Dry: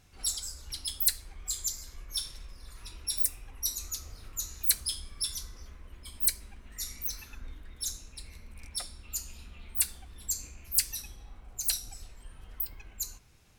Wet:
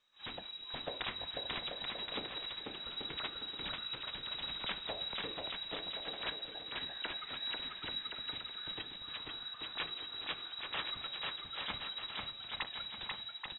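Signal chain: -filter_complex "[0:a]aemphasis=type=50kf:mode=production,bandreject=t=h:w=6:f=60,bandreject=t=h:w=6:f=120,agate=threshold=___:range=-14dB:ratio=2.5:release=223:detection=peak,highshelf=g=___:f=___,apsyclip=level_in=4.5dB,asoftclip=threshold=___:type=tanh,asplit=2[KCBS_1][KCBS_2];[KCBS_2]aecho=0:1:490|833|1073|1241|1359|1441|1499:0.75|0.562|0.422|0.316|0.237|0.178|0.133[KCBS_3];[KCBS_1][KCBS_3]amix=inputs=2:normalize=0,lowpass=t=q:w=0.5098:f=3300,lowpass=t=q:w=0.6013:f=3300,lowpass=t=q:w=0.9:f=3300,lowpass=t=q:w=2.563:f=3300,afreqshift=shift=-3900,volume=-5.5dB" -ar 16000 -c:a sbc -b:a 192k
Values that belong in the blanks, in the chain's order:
-41dB, 4, 2500, -14dB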